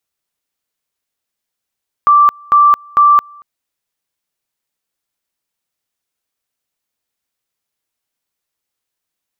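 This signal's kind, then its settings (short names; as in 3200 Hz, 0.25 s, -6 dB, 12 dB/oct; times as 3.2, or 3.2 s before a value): two-level tone 1170 Hz -4.5 dBFS, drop 30 dB, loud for 0.22 s, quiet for 0.23 s, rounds 3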